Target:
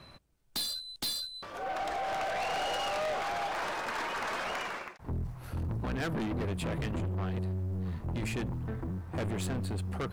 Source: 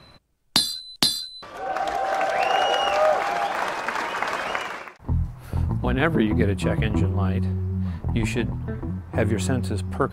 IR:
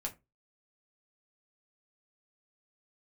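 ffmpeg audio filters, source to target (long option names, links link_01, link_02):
-af "acrusher=bits=9:mode=log:mix=0:aa=0.000001,aeval=exprs='(tanh(22.4*val(0)+0.15)-tanh(0.15))/22.4':channel_layout=same,volume=-3.5dB"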